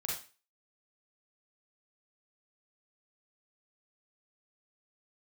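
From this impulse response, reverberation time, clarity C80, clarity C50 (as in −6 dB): 0.35 s, 9.0 dB, 2.0 dB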